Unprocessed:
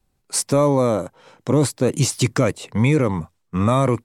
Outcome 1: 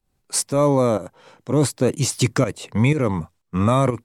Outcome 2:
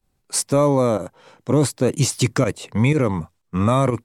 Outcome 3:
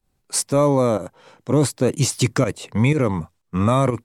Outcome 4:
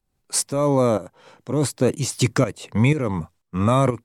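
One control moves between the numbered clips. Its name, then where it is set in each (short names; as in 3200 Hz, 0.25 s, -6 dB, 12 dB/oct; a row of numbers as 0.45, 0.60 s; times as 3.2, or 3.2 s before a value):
pump, release: 191, 67, 106, 434 ms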